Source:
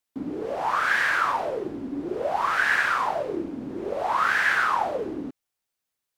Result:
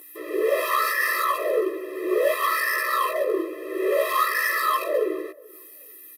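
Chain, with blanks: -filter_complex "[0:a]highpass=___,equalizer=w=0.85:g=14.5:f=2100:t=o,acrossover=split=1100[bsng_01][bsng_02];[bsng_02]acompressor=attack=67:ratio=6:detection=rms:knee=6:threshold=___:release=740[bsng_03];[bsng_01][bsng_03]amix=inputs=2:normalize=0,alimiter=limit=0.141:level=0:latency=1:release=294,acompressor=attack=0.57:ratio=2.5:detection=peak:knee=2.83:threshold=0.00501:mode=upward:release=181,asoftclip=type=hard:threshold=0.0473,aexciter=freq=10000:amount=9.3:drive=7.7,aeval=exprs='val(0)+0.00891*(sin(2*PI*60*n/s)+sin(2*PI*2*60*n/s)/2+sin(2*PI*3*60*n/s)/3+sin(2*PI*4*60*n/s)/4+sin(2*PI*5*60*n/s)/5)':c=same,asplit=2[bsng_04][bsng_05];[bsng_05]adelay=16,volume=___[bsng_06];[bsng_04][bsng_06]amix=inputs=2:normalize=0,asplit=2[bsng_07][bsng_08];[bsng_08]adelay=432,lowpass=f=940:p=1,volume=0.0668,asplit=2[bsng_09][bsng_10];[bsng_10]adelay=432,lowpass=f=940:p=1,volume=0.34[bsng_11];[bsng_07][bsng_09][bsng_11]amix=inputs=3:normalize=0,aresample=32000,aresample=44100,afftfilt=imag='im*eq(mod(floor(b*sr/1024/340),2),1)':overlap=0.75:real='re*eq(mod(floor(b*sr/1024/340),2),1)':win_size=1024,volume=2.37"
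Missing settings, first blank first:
240, 0.0355, 0.794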